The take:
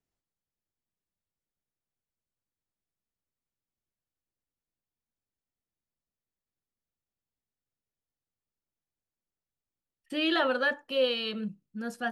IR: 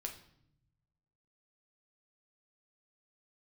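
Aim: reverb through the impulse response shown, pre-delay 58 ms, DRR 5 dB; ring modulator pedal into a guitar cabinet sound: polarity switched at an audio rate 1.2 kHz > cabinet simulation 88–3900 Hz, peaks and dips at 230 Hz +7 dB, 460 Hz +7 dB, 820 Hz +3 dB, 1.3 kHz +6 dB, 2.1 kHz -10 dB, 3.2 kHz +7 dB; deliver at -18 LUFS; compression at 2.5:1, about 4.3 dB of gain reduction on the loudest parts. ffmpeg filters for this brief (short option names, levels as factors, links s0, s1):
-filter_complex "[0:a]acompressor=threshold=0.0398:ratio=2.5,asplit=2[s0][s1];[1:a]atrim=start_sample=2205,adelay=58[s2];[s1][s2]afir=irnorm=-1:irlink=0,volume=0.668[s3];[s0][s3]amix=inputs=2:normalize=0,aeval=exprs='val(0)*sgn(sin(2*PI*1200*n/s))':c=same,highpass=88,equalizer=f=230:t=q:w=4:g=7,equalizer=f=460:t=q:w=4:g=7,equalizer=f=820:t=q:w=4:g=3,equalizer=f=1300:t=q:w=4:g=6,equalizer=f=2100:t=q:w=4:g=-10,equalizer=f=3200:t=q:w=4:g=7,lowpass=f=3900:w=0.5412,lowpass=f=3900:w=1.3066,volume=3.98"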